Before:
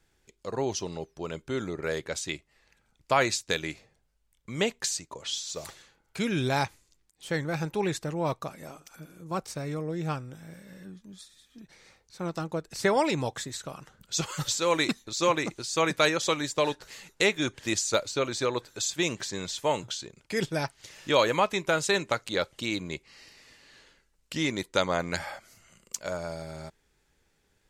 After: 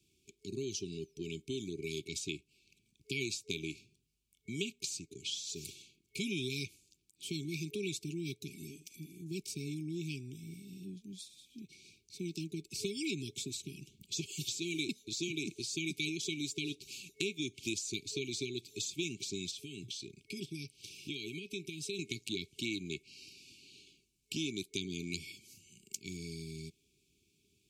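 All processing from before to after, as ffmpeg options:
ffmpeg -i in.wav -filter_complex "[0:a]asettb=1/sr,asplit=3[link_01][link_02][link_03];[link_01]atrim=end=19.514[link_04];[link_02]atrim=start=19.51:end=21.99,asetpts=PTS-STARTPTS,afade=type=in:duration=0.004:curve=qsin,afade=type=out:start_time=2.476:duration=0.004:curve=qsin,bandreject=frequency=6900:width=8.5,acompressor=threshold=-42dB:ratio=2:attack=3.2:release=140:knee=1:detection=peak[link_05];[link_03]atrim=start=21.986[link_06];[link_04][link_05]acrossfade=duration=0.004:curve1=hsin:curve2=qsin[link_07];[link_07][link_06]acrossfade=duration=0.004:curve1=qsin:curve2=hsin,afftfilt=real='re*(1-between(b*sr/4096,430,2200))':imag='im*(1-between(b*sr/4096,430,2200))':win_size=4096:overlap=0.75,highpass=92,acrossover=split=290|2000[link_08][link_09][link_10];[link_08]acompressor=threshold=-43dB:ratio=4[link_11];[link_09]acompressor=threshold=-42dB:ratio=4[link_12];[link_10]acompressor=threshold=-39dB:ratio=4[link_13];[link_11][link_12][link_13]amix=inputs=3:normalize=0" out.wav

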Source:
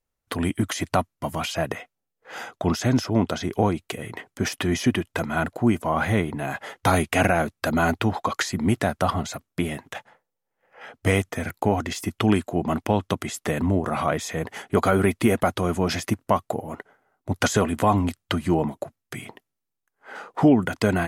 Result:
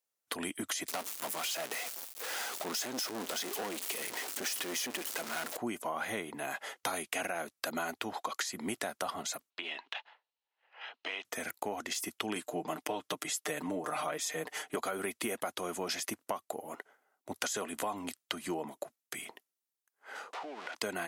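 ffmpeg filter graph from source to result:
ffmpeg -i in.wav -filter_complex "[0:a]asettb=1/sr,asplit=3[link_01][link_02][link_03];[link_01]atrim=end=0.884[link_04];[link_02]atrim=start=0.88:end=5.57,asetpts=PTS-STARTPTS,afade=type=in:duration=0.004:curve=qsin,afade=type=out:start_time=4.686:duration=0.004:curve=qsin,aeval=exprs='val(0)+0.5*0.0596*sgn(val(0))':channel_layout=same,highpass=180,aeval=exprs='(tanh(11.2*val(0)+0.7)-tanh(0.7))/11.2':channel_layout=same[link_05];[link_03]atrim=start=5.566[link_06];[link_04][link_05]acrossfade=duration=0.004:curve1=hsin:curve2=qsin[link_07];[link_07][link_06]acrossfade=duration=0.004:curve1=qsin:curve2=hsin,asettb=1/sr,asplit=3[link_08][link_09][link_10];[link_08]atrim=end=9.504[link_11];[link_09]atrim=start=9.5:end=11.25,asetpts=PTS-STARTPTS,afade=type=in:duration=0.004:curve=qsin,afade=type=out:start_time=1.746:duration=0.004:curve=qsin,highpass=420,equalizer=frequency=510:width_type=q:width=4:gain=-7,equalizer=frequency=960:width_type=q:width=4:gain=5,equalizer=frequency=2800:width_type=q:width=4:gain=9,equalizer=frequency=4000:width_type=q:width=4:gain=7,lowpass=frequency=4500:width=0.5412,lowpass=frequency=4500:width=1.3066,acompressor=threshold=-29dB:ratio=4:attack=3.2:release=140:knee=1:detection=peak[link_12];[link_10]atrim=start=11.246[link_13];[link_11][link_12]acrossfade=duration=0.004:curve1=hsin:curve2=qsin[link_14];[link_14][link_13]acrossfade=duration=0.004:curve1=qsin:curve2=hsin,asettb=1/sr,asplit=3[link_15][link_16][link_17];[link_15]atrim=end=12.354[link_18];[link_16]atrim=start=12.35:end=14.76,asetpts=PTS-STARTPTS,afade=type=in:duration=0.004:curve=qsin,afade=type=out:start_time=2.406:duration=0.004:curve=qsin,highpass=40,aecho=1:1:6.6:0.8,atrim=end_sample=106281[link_19];[link_17]atrim=start=14.756[link_20];[link_18][link_19]acrossfade=duration=0.004:curve1=hsin:curve2=qsin[link_21];[link_21][link_20]acrossfade=duration=0.004:curve1=qsin:curve2=hsin,asettb=1/sr,asplit=3[link_22][link_23][link_24];[link_22]atrim=end=20.334[link_25];[link_23]atrim=start=20.33:end=20.75,asetpts=PTS-STARTPTS,afade=type=in:duration=0.004:curve=qsin,afade=type=out:start_time=0.416:duration=0.004:curve=qsin,aeval=exprs='val(0)+0.5*0.0668*sgn(val(0))':channel_layout=same,highpass=570,lowpass=3000,acompressor=threshold=-30dB:ratio=16:attack=3.2:release=140:knee=1:detection=peak[link_26];[link_24]atrim=start=20.746[link_27];[link_25][link_26]acrossfade=duration=0.004:curve1=hsin:curve2=qsin[link_28];[link_28][link_27]acrossfade=duration=0.004:curve1=qsin:curve2=hsin,highpass=330,highshelf=frequency=3100:gain=10,acompressor=threshold=-24dB:ratio=6,volume=-8dB" out.wav

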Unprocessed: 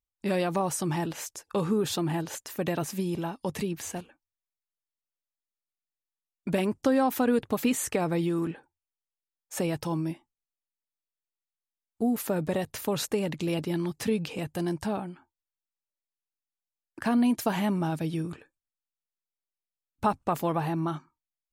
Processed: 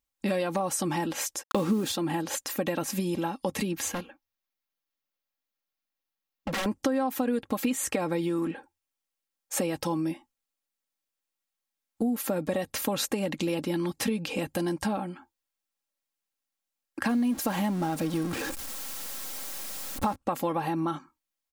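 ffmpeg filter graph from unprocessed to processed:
ffmpeg -i in.wav -filter_complex "[0:a]asettb=1/sr,asplit=3[link_01][link_02][link_03];[link_01]atrim=end=1.434[link_04];[link_02]atrim=start=1.43:end=1.92,asetpts=PTS-STARTPTS,afade=type=in:duration=0.004:curve=qsin,afade=type=out:start_time=0.486:duration=0.004:curve=qsin,equalizer=frequency=270:width=1.1:gain=6,acontrast=34,acrusher=bits=5:mix=0:aa=0.5[link_05];[link_03]atrim=start=1.916[link_06];[link_04][link_05]acrossfade=duration=0.004:curve1=hsin:curve2=qsin[link_07];[link_07][link_06]acrossfade=duration=0.004:curve1=qsin:curve2=hsin,asettb=1/sr,asplit=3[link_08][link_09][link_10];[link_08]atrim=end=3.894[link_11];[link_09]atrim=start=3.89:end=6.66,asetpts=PTS-STARTPTS,afade=type=in:duration=0.004:curve=qsin,afade=type=out:start_time=2.766:duration=0.004:curve=qsin,equalizer=frequency=8400:width_type=o:width=0.45:gain=-14.5,aeval=exprs='0.0299*(abs(mod(val(0)/0.0299+3,4)-2)-1)':channel_layout=same[link_12];[link_10]atrim=start=6.656[link_13];[link_11][link_12]acrossfade=duration=0.004:curve1=hsin:curve2=qsin[link_14];[link_14][link_13]acrossfade=duration=0.004:curve1=qsin:curve2=hsin,asettb=1/sr,asplit=3[link_15][link_16][link_17];[link_15]atrim=end=17.094[link_18];[link_16]atrim=start=17.09:end=20.16,asetpts=PTS-STARTPTS,afade=type=in:duration=0.004:curve=qsin,afade=type=out:start_time=3.066:duration=0.004:curve=qsin,aeval=exprs='val(0)+0.5*0.0224*sgn(val(0))':channel_layout=same,equalizer=frequency=2600:width=1.1:gain=-3.5[link_19];[link_17]atrim=start=20.156[link_20];[link_18][link_19]acrossfade=duration=0.004:curve1=hsin:curve2=qsin[link_21];[link_21][link_20]acrossfade=duration=0.004:curve1=qsin:curve2=hsin,lowshelf=frequency=82:gain=-8,aecho=1:1:3.7:0.54,acompressor=threshold=-32dB:ratio=4,volume=6dB" out.wav

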